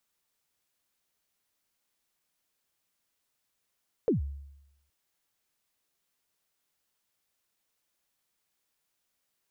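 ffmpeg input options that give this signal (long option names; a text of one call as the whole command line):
ffmpeg -f lavfi -i "aevalsrc='0.1*pow(10,-3*t/0.89)*sin(2*PI*(520*0.128/log(70/520)*(exp(log(70/520)*min(t,0.128)/0.128)-1)+70*max(t-0.128,0)))':duration=0.82:sample_rate=44100" out.wav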